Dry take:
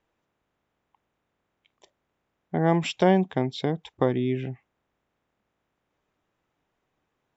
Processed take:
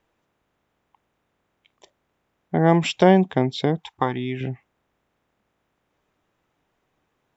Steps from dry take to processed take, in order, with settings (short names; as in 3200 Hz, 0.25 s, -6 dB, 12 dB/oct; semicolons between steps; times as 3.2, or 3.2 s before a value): 3.78–4.41 resonant low shelf 690 Hz -6 dB, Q 3; gain +5 dB